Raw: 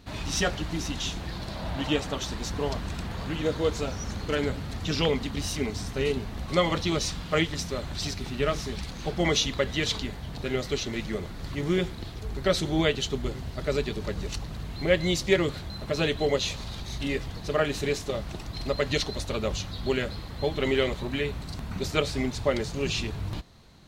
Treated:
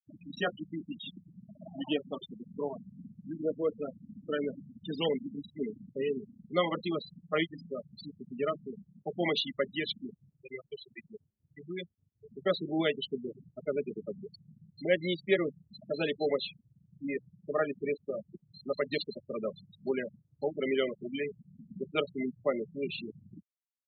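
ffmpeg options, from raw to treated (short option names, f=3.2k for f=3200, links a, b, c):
-filter_complex "[0:a]asettb=1/sr,asplit=3[a][b][c];[a]atrim=end=10.284[d];[b]atrim=start=10.28:end=12.21,asetpts=PTS-STARTPTS,afade=t=in:d=0.004:c=qsin,afade=t=out:st=1.926:d=0.004:c=qsin,equalizer=f=280:w=0.51:g=-10[e];[c]atrim=start=12.206[f];[d][e]acrossfade=d=0.004:c1=hsin:c2=qsin[g];[g][f]acrossfade=d=0.004:c1=qsin:c2=hsin,lowpass=f=4.8k:w=0.5412,lowpass=f=4.8k:w=1.3066,afftfilt=real='re*gte(hypot(re,im),0.0794)':imag='im*gte(hypot(re,im),0.0794)':win_size=1024:overlap=0.75,highpass=f=190:w=0.5412,highpass=f=190:w=1.3066,volume=-4dB"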